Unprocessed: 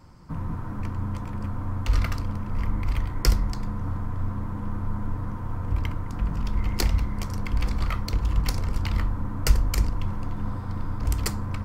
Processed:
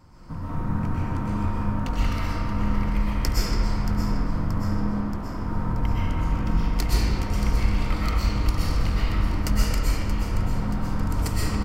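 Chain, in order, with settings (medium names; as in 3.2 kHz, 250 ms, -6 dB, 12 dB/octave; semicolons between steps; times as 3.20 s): compression, threshold -24 dBFS, peak gain reduction 13 dB; 4.80–5.34 s: hard clipper -33.5 dBFS, distortion -18 dB; feedback delay 628 ms, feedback 60%, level -11.5 dB; reverberation RT60 2.7 s, pre-delay 85 ms, DRR -8.5 dB; trim -2 dB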